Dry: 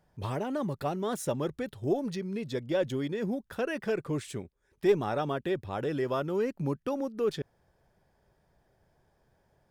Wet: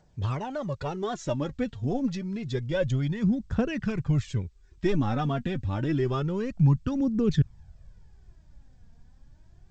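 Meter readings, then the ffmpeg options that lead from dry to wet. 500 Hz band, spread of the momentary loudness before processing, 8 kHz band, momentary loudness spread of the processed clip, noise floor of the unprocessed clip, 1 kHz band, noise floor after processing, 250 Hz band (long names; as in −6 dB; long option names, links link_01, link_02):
−2.0 dB, 6 LU, can't be measured, 7 LU, −72 dBFS, +0.5 dB, −57 dBFS, +6.0 dB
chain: -af "asubboost=boost=10.5:cutoff=150,aphaser=in_gain=1:out_gain=1:delay=4.4:decay=0.59:speed=0.28:type=triangular" -ar 16000 -c:a g722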